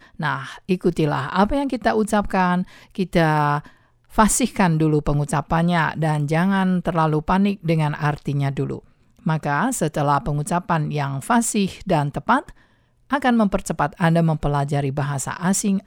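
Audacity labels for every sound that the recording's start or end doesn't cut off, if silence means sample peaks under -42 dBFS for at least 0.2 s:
4.110000	8.840000	sound
9.190000	12.520000	sound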